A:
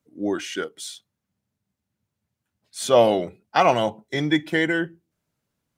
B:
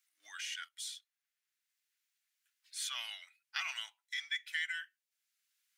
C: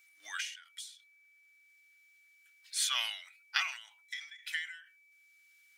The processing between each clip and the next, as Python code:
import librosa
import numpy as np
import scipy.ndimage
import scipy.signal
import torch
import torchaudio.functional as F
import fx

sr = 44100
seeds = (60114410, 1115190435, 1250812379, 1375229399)

y1 = scipy.signal.sosfilt(scipy.signal.cheby2(4, 60, 500.0, 'highpass', fs=sr, output='sos'), x)
y1 = fx.band_squash(y1, sr, depth_pct=40)
y1 = y1 * librosa.db_to_amplitude(-8.0)
y2 = y1 + 10.0 ** (-71.0 / 20.0) * np.sin(2.0 * np.pi * 2300.0 * np.arange(len(y1)) / sr)
y2 = fx.end_taper(y2, sr, db_per_s=100.0)
y2 = y2 * librosa.db_to_amplitude(8.5)